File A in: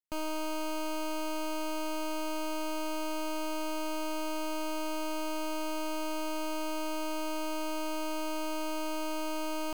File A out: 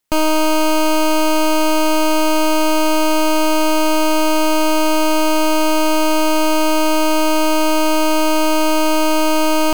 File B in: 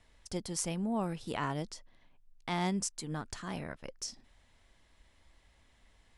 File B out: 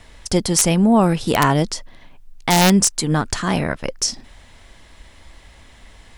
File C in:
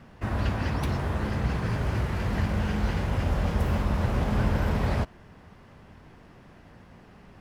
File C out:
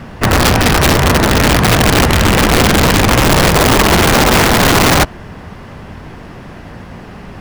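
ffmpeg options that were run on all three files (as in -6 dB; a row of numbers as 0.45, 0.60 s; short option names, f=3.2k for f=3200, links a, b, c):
-af "acontrast=71,aeval=exprs='(mod(5.96*val(0)+1,2)-1)/5.96':c=same,apsyclip=19dB,volume=-6dB"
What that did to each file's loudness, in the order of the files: +19.5, +19.5, +18.0 LU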